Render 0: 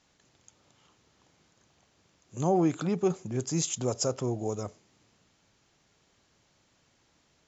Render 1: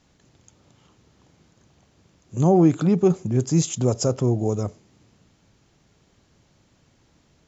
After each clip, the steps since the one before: bass shelf 410 Hz +10.5 dB; trim +2.5 dB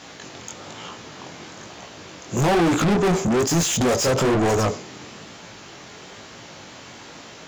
chorus 1.1 Hz, delay 17 ms, depth 6.4 ms; overdrive pedal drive 39 dB, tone 4.3 kHz, clips at -8.5 dBFS; trim -3.5 dB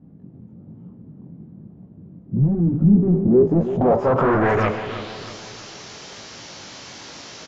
low-pass sweep 190 Hz -> 5.6 kHz, 2.87–5.34 s; feedback delay 320 ms, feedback 45%, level -11.5 dB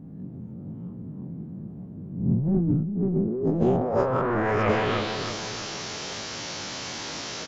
reverse spectral sustain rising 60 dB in 0.67 s; compressor with a negative ratio -21 dBFS, ratio -1; trim -2.5 dB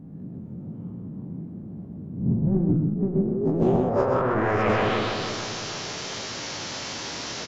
delay 127 ms -4.5 dB; loudspeaker Doppler distortion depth 0.15 ms

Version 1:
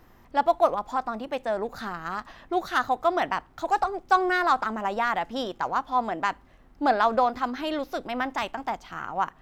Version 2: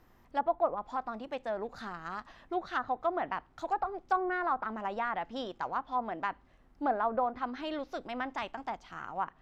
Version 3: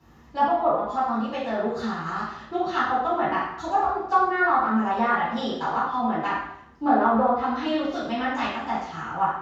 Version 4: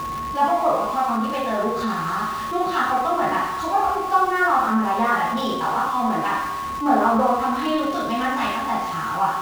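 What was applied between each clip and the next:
low-pass that closes with the level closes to 1.3 kHz, closed at -18.5 dBFS; trim -7.5 dB
reverberation RT60 0.70 s, pre-delay 3 ms, DRR -13.5 dB; trim -6 dB
jump at every zero crossing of -31.5 dBFS; whistle 1.1 kHz -27 dBFS; trim +1 dB

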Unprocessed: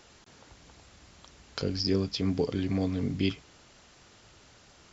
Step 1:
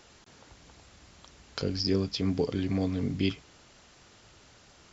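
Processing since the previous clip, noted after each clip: no audible change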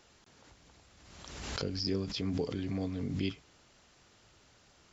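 swell ahead of each attack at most 39 dB/s; trim -6.5 dB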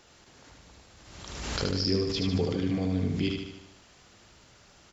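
feedback delay 75 ms, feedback 55%, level -4 dB; trim +4.5 dB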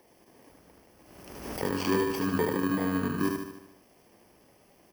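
bit-reversed sample order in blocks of 32 samples; three-band isolator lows -15 dB, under 200 Hz, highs -13 dB, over 2.1 kHz; trim +4 dB

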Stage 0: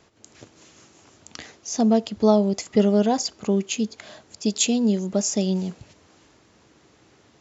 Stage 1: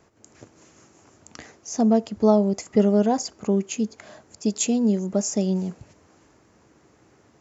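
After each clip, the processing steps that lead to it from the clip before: peaking EQ 3.6 kHz -10 dB 1.1 oct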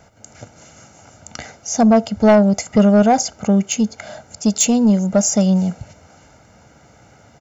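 comb 1.4 ms, depth 69%; saturation -14 dBFS, distortion -15 dB; trim +8.5 dB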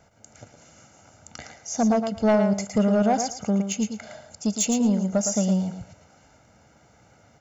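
thinning echo 112 ms, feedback 18%, high-pass 190 Hz, level -6.5 dB; trim -8.5 dB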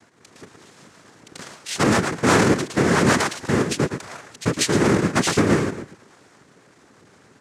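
square wave that keeps the level; noise-vocoded speech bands 3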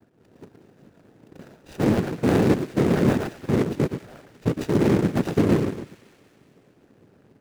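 median filter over 41 samples; feedback echo behind a high-pass 187 ms, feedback 65%, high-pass 1.9 kHz, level -15.5 dB

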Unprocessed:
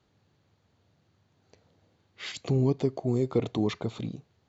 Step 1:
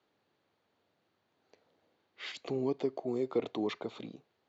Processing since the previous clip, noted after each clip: three-band isolator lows -20 dB, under 250 Hz, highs -12 dB, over 4.8 kHz; trim -3 dB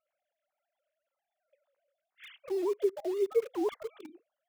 formants replaced by sine waves; in parallel at -8.5 dB: bit crusher 7-bit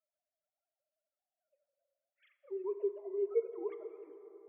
formants replaced by sine waves; plate-style reverb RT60 4 s, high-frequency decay 0.4×, DRR 8.5 dB; trim -6.5 dB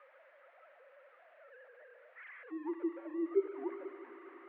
zero-crossing glitches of -33.5 dBFS; mistuned SSB -69 Hz 460–2000 Hz; trim +4 dB

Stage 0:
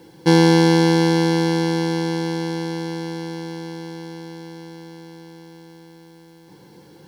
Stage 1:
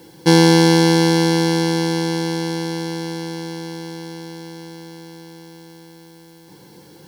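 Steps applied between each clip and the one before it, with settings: treble shelf 4.7 kHz +8 dB; trim +1.5 dB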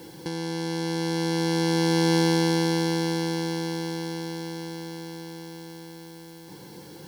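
compressor with a negative ratio -21 dBFS, ratio -1; trim -3.5 dB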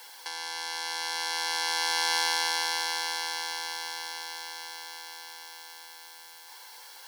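high-pass 870 Hz 24 dB/octave; trim +3 dB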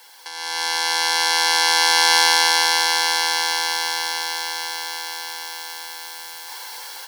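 level rider gain up to 13 dB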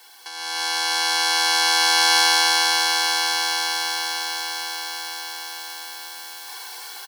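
comb 2.7 ms, depth 74%; trim -3 dB

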